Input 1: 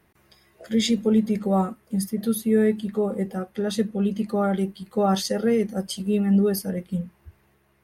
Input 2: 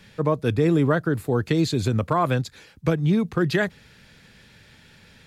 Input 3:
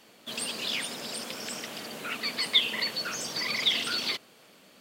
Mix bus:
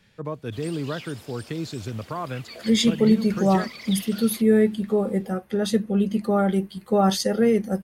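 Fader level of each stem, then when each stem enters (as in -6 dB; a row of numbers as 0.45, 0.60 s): +2.0, -9.5, -10.5 dB; 1.95, 0.00, 0.25 s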